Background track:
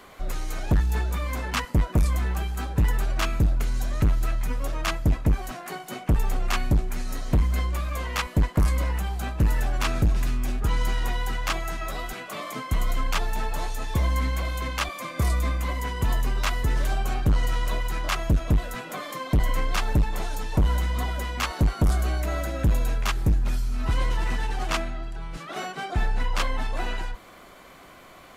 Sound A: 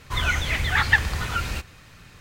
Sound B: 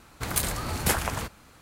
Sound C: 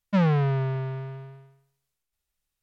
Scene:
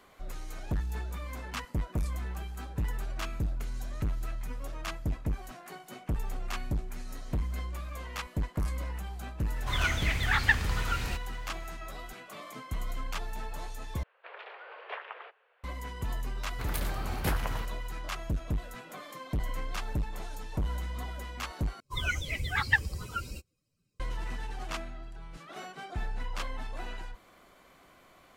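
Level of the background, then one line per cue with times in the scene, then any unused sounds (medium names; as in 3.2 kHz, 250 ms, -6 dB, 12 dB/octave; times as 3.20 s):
background track -10.5 dB
9.56 s: add A -6 dB
14.03 s: replace with B -12 dB + mistuned SSB +230 Hz 230–2900 Hz
16.38 s: add B -6.5 dB + peaking EQ 8 kHz -11 dB 1.2 oct
21.80 s: replace with A -5 dB + expander on every frequency bin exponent 2
not used: C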